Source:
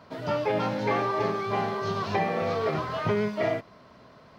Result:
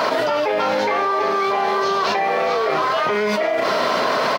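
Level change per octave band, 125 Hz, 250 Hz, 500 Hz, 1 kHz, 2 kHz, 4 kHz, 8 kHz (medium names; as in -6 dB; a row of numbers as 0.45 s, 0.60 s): -6.0 dB, +3.5 dB, +8.5 dB, +11.0 dB, +12.0 dB, +14.0 dB, no reading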